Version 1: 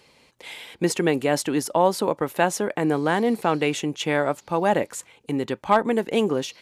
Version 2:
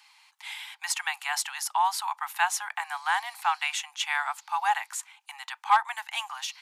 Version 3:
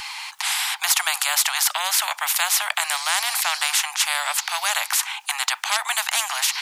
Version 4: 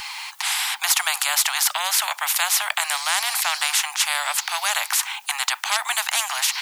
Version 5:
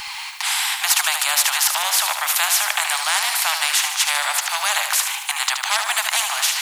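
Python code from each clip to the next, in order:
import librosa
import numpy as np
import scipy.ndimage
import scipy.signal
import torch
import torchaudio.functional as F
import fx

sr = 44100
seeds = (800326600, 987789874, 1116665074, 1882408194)

y1 = scipy.signal.sosfilt(scipy.signal.butter(16, 780.0, 'highpass', fs=sr, output='sos'), x)
y2 = fx.spectral_comp(y1, sr, ratio=4.0)
y2 = y2 * librosa.db_to_amplitude(6.0)
y3 = fx.dmg_noise_colour(y2, sr, seeds[0], colour='blue', level_db=-52.0)
y4 = fx.echo_feedback(y3, sr, ms=75, feedback_pct=59, wet_db=-7.0)
y4 = y4 * librosa.db_to_amplitude(1.5)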